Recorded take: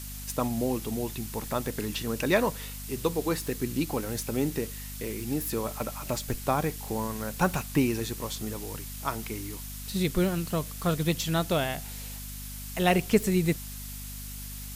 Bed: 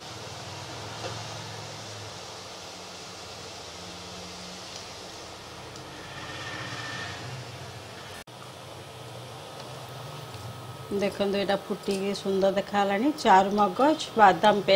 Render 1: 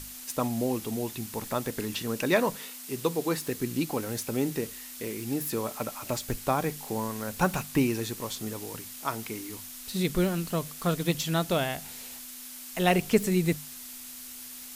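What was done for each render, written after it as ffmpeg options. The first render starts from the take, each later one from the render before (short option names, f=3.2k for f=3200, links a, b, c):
-af "bandreject=f=50:t=h:w=6,bandreject=f=100:t=h:w=6,bandreject=f=150:t=h:w=6,bandreject=f=200:t=h:w=6"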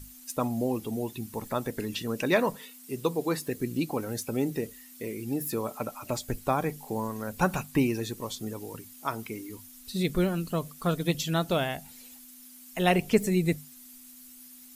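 -af "afftdn=nr=12:nf=-43"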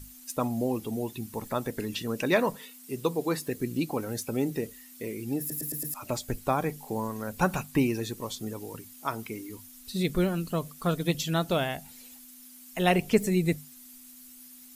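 -filter_complex "[0:a]asplit=6[a][b][c][d][e][f];[a]atrim=end=5.502[g];[b]atrim=start=5.388:end=5.502[h];[c]atrim=start=5.388:end=5.502[i];[d]atrim=start=5.388:end=5.502[j];[e]atrim=start=5.388:end=5.502[k];[f]atrim=start=5.938[l];[g][h]acrossfade=d=0.004:c1=hsin:c2=hsin[m];[m][i]acrossfade=d=0.004:c1=hsin:c2=hsin[n];[n][j]acrossfade=d=0.004:c1=hsin:c2=hsin[o];[o][k]acrossfade=d=0.004:c1=hsin:c2=hsin[p];[p][l]acrossfade=d=0.004:c1=hsin:c2=hsin"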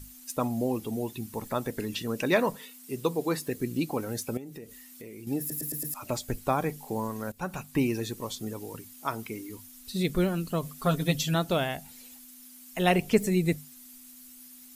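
-filter_complex "[0:a]asettb=1/sr,asplit=3[a][b][c];[a]atrim=end=4.374[d];[b]atrim=start=4.37:end=5.27,asetpts=PTS-STARTPTS,afade=t=in:d=0.004:c=qsin,afade=t=out:st=0.896:d=0.004:c=qsin,acompressor=threshold=-41dB:ratio=4:attack=3.2:release=140:knee=1:detection=peak[e];[c]atrim=start=5.266[f];[d][e]acrossfade=d=0.004:c1=hsin:c2=qsin[g];[g][f]acrossfade=d=0.004:c1=qsin:c2=hsin,asettb=1/sr,asplit=3[h][i][j];[h]atrim=end=10.624[k];[i]atrim=start=10.62:end=11.35,asetpts=PTS-STARTPTS,afade=t=in:d=0.004:c=qsin,afade=t=out:st=0.726:d=0.004:c=qsin,aecho=1:1:7.4:0.7,atrim=end_sample=32193[l];[j]atrim=start=11.346[m];[k][l]acrossfade=d=0.004:c1=hsin:c2=qsin[n];[n][m]acrossfade=d=0.004:c1=qsin:c2=hsin,asplit=2[o][p];[o]atrim=end=7.32,asetpts=PTS-STARTPTS,afade=t=out:st=7.316:d=0.004:c=hsin:silence=0.177828[q];[p]atrim=start=7.32,asetpts=PTS-STARTPTS,afade=t=in:d=0.6:silence=0.177828[r];[q][r]concat=n=2:v=0:a=1"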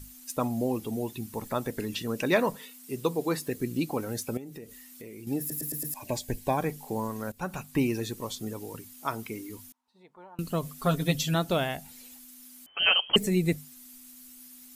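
-filter_complex "[0:a]asettb=1/sr,asplit=3[a][b][c];[a]atrim=end=5.944[d];[b]atrim=start=5.94:end=6.58,asetpts=PTS-STARTPTS,afade=t=in:d=0.004:c=qsin,afade=t=out:st=0.636:d=0.004:c=qsin,asuperstop=centerf=1300:order=8:qfactor=3.4[e];[c]atrim=start=6.576[f];[d][e]acrossfade=d=0.004:c1=hsin:c2=qsin[g];[g][f]acrossfade=d=0.004:c1=qsin:c2=hsin,asettb=1/sr,asplit=3[h][i][j];[h]atrim=end=9.724[k];[i]atrim=start=9.72:end=10.39,asetpts=PTS-STARTPTS,afade=t=in:d=0.004:c=qsin,afade=t=out:st=0.666:d=0.004:c=qsin,bandpass=f=910:t=q:w=10[l];[j]atrim=start=10.386[m];[k][l]acrossfade=d=0.004:c1=hsin:c2=qsin[n];[n][m]acrossfade=d=0.004:c1=qsin:c2=hsin,asettb=1/sr,asplit=3[o][p][q];[o]atrim=end=12.664[r];[p]atrim=start=12.66:end=13.16,asetpts=PTS-STARTPTS,afade=t=in:d=0.004:c=qsin,afade=t=out:st=0.496:d=0.004:c=qsin,lowpass=f=2.8k:t=q:w=0.5098,lowpass=f=2.8k:t=q:w=0.6013,lowpass=f=2.8k:t=q:w=0.9,lowpass=f=2.8k:t=q:w=2.563,afreqshift=-3300[s];[q]atrim=start=13.156[t];[r][s]acrossfade=d=0.004:c1=hsin:c2=qsin[u];[u][t]acrossfade=d=0.004:c1=qsin:c2=hsin"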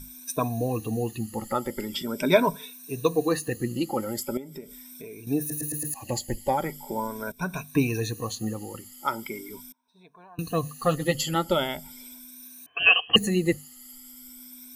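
-af "afftfilt=real='re*pow(10,17/40*sin(2*PI*(1.6*log(max(b,1)*sr/1024/100)/log(2)-(0.41)*(pts-256)/sr)))':imag='im*pow(10,17/40*sin(2*PI*(1.6*log(max(b,1)*sr/1024/100)/log(2)-(0.41)*(pts-256)/sr)))':win_size=1024:overlap=0.75"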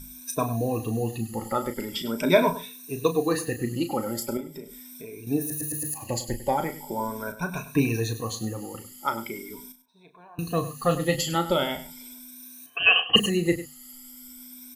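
-filter_complex "[0:a]asplit=2[a][b];[b]adelay=35,volume=-9dB[c];[a][c]amix=inputs=2:normalize=0,aecho=1:1:100:0.2"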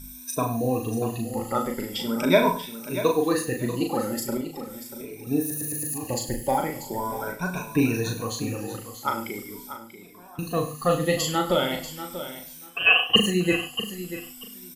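-filter_complex "[0:a]asplit=2[a][b];[b]adelay=39,volume=-5dB[c];[a][c]amix=inputs=2:normalize=0,aecho=1:1:638|1276:0.251|0.0452"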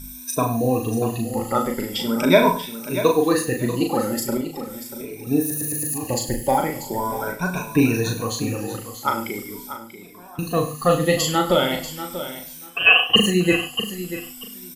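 -af "volume=4.5dB,alimiter=limit=-2dB:level=0:latency=1"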